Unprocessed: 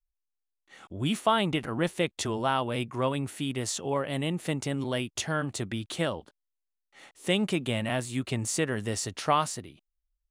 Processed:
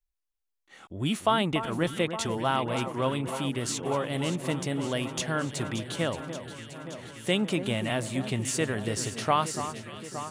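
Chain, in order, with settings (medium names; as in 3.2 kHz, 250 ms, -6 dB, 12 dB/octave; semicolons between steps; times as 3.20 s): echo whose repeats swap between lows and highs 288 ms, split 1.6 kHz, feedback 85%, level -10 dB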